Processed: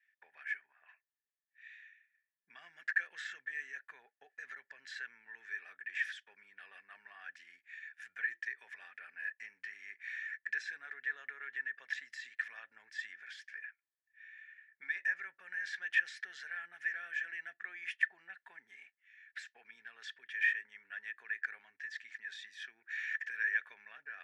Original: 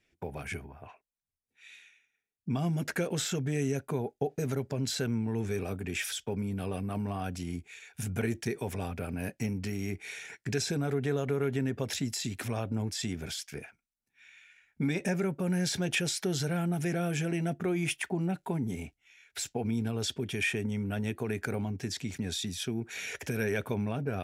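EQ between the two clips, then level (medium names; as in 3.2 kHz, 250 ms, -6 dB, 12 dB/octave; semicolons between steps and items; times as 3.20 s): ladder band-pass 1.8 kHz, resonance 90%; +2.0 dB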